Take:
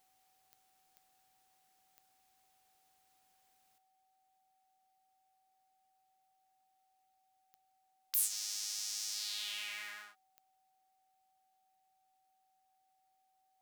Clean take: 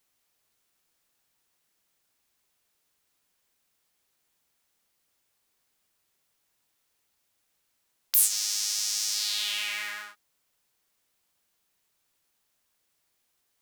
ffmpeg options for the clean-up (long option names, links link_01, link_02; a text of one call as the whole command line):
ffmpeg -i in.wav -af "adeclick=threshold=4,bandreject=frequency=760:width=30,asetnsamples=nb_out_samples=441:pad=0,asendcmd='3.78 volume volume 11dB',volume=0dB" out.wav